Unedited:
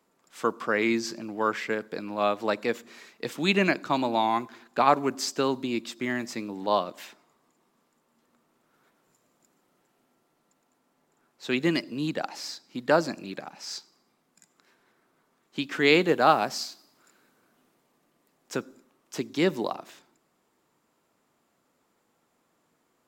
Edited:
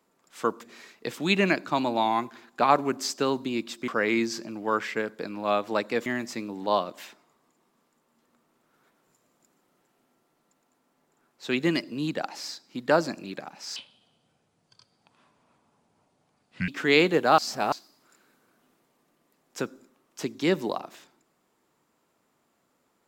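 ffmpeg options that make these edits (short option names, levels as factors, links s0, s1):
-filter_complex "[0:a]asplit=8[s0][s1][s2][s3][s4][s5][s6][s7];[s0]atrim=end=0.612[s8];[s1]atrim=start=2.788:end=6.062[s9];[s2]atrim=start=0.608:end=2.792[s10];[s3]atrim=start=6.058:end=13.764[s11];[s4]atrim=start=13.76:end=15.63,asetpts=PTS-STARTPTS,asetrate=28224,aresample=44100[s12];[s5]atrim=start=15.626:end=16.332[s13];[s6]atrim=start=16.328:end=16.672,asetpts=PTS-STARTPTS,areverse[s14];[s7]atrim=start=16.668[s15];[s8][s9]acrossfade=d=0.004:c1=hsin:c2=hsin[s16];[s16][s10]acrossfade=d=0.004:c1=hsin:c2=hsin[s17];[s17][s11]acrossfade=d=0.004:c1=hsin:c2=hsin[s18];[s18][s12]acrossfade=d=0.004:c1=hsin:c2=hsin[s19];[s19][s13]acrossfade=d=0.004:c1=hsin:c2=hsin[s20];[s20][s14]acrossfade=d=0.004:c1=hsin:c2=hsin[s21];[s21][s15]acrossfade=d=0.004:c1=hsin:c2=hsin"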